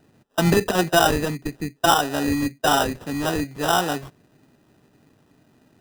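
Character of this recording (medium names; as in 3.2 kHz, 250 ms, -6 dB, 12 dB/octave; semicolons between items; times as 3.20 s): aliases and images of a low sample rate 2.2 kHz, jitter 0%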